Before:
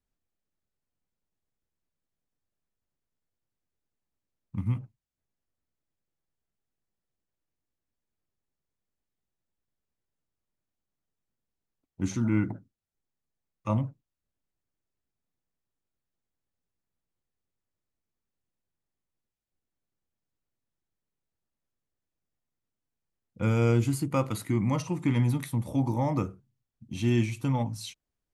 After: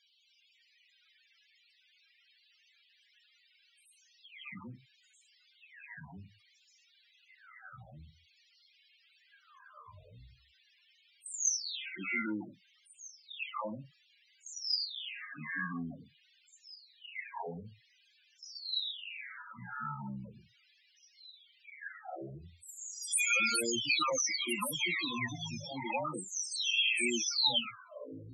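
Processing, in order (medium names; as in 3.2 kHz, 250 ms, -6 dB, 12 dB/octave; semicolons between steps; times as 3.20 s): delay that grows with frequency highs early, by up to 800 ms; tilt EQ +4 dB/octave; added noise white -67 dBFS; frequency weighting D; ever faster or slower copies 277 ms, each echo -4 st, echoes 3; loudest bins only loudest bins 16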